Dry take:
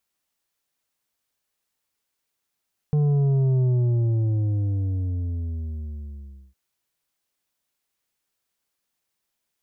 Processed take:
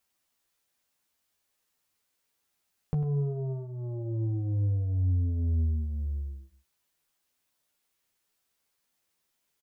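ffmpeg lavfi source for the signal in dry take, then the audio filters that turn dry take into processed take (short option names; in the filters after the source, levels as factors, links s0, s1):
-f lavfi -i "aevalsrc='0.126*clip((3.61-t)/2.93,0,1)*tanh(2.24*sin(2*PI*150*3.61/log(65/150)*(exp(log(65/150)*t/3.61)-1)))/tanh(2.24)':d=3.61:s=44100"
-filter_complex "[0:a]acompressor=threshold=0.0316:ratio=5,asplit=2[s0][s1];[s1]adelay=12,volume=0.631[s2];[s0][s2]amix=inputs=2:normalize=0,asplit=2[s3][s4];[s4]aecho=0:1:98:0.266[s5];[s3][s5]amix=inputs=2:normalize=0"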